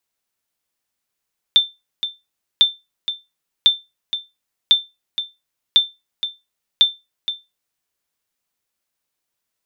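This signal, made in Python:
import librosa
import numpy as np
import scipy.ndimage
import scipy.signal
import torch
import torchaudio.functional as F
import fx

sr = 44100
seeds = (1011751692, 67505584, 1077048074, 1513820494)

y = fx.sonar_ping(sr, hz=3560.0, decay_s=0.22, every_s=1.05, pings=6, echo_s=0.47, echo_db=-11.5, level_db=-3.5)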